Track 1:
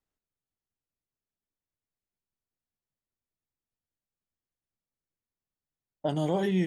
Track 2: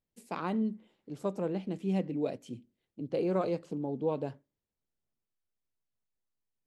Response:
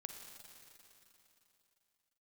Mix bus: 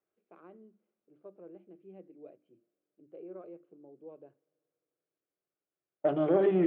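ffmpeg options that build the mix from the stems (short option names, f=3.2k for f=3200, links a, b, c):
-filter_complex "[0:a]asoftclip=type=tanh:threshold=-24dB,volume=1.5dB,asplit=2[a][b];[b]volume=-3.5dB[c];[1:a]volume=-19dB,asplit=2[d][e];[e]volume=-22.5dB[f];[2:a]atrim=start_sample=2205[g];[c][f]amix=inputs=2:normalize=0[h];[h][g]afir=irnorm=-1:irlink=0[i];[a][d][i]amix=inputs=3:normalize=0,highpass=220,equalizer=f=240:t=q:w=4:g=-10,equalizer=f=350:t=q:w=4:g=9,equalizer=f=600:t=q:w=4:g=3,equalizer=f=920:t=q:w=4:g=-9,equalizer=f=1.9k:t=q:w=4:g=-7,lowpass=f=2.2k:w=0.5412,lowpass=f=2.2k:w=1.3066,bandreject=f=50:t=h:w=6,bandreject=f=100:t=h:w=6,bandreject=f=150:t=h:w=6,bandreject=f=200:t=h:w=6,bandreject=f=250:t=h:w=6,bandreject=f=300:t=h:w=6,bandreject=f=350:t=h:w=6"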